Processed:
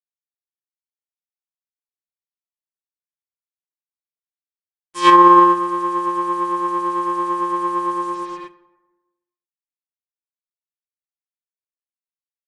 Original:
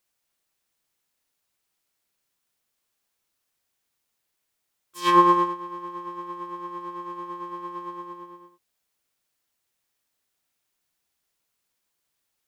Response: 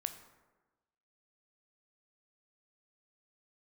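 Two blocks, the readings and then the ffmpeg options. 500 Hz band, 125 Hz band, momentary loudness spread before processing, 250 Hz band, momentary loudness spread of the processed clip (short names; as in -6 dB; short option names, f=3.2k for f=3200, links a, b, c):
+9.5 dB, +3.5 dB, 19 LU, +9.5 dB, 15 LU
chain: -filter_complex "[0:a]equalizer=f=170:w=2.9:g=-7,acrusher=bits=7:mix=0:aa=0.5,asplit=2[a][b];[1:a]atrim=start_sample=2205,lowpass=3.1k[c];[b][c]afir=irnorm=-1:irlink=0,volume=0dB[d];[a][d]amix=inputs=2:normalize=0,aresample=22050,aresample=44100,alimiter=level_in=9.5dB:limit=-1dB:release=50:level=0:latency=1,volume=-1dB"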